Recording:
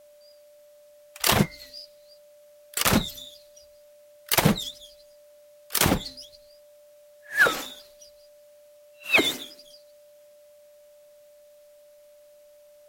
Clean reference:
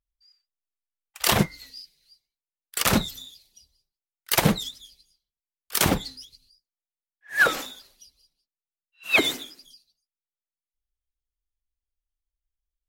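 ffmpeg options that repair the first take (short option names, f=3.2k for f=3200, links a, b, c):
-af "bandreject=f=590:w=30,agate=range=-21dB:threshold=-46dB"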